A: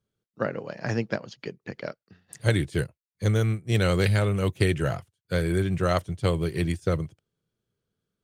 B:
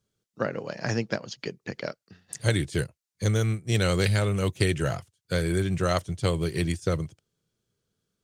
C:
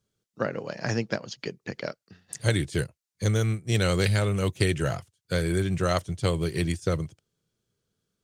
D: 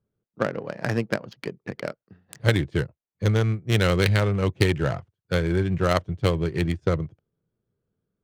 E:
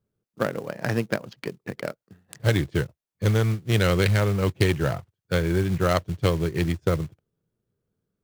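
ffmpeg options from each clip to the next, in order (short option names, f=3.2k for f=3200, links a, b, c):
-filter_complex "[0:a]equalizer=f=6.4k:w=0.83:g=7.5,asplit=2[a][b];[b]acompressor=threshold=-30dB:ratio=6,volume=-1dB[c];[a][c]amix=inputs=2:normalize=0,volume=-3.5dB"
-af anull
-af "adynamicsmooth=sensitivity=3.5:basefreq=1.3k,aeval=exprs='0.501*(cos(1*acos(clip(val(0)/0.501,-1,1)))-cos(1*PI/2))+0.0224*(cos(7*acos(clip(val(0)/0.501,-1,1)))-cos(7*PI/2))':c=same,volume=5dB"
-af "asoftclip=type=hard:threshold=-10dB,acrusher=bits=5:mode=log:mix=0:aa=0.000001"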